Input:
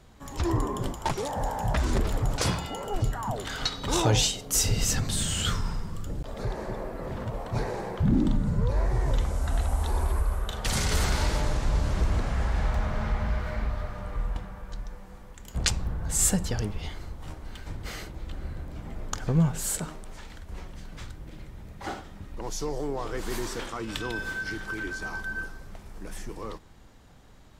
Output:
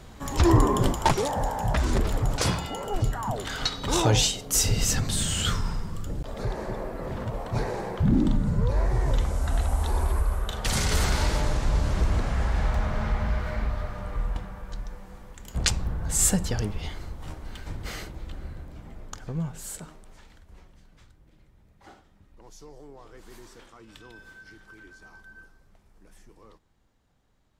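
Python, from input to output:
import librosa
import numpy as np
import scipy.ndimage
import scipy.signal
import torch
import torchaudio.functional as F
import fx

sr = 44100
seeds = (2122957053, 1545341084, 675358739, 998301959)

y = fx.gain(x, sr, db=fx.line((1.0, 8.0), (1.5, 1.5), (17.98, 1.5), (19.29, -8.0), (20.17, -8.0), (21.07, -15.5)))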